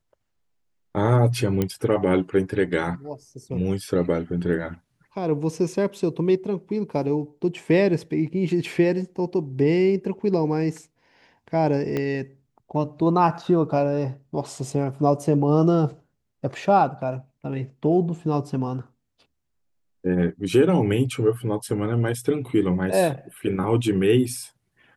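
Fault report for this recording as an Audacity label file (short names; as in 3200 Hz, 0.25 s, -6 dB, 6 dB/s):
1.620000	1.620000	pop -10 dBFS
11.970000	11.970000	pop -14 dBFS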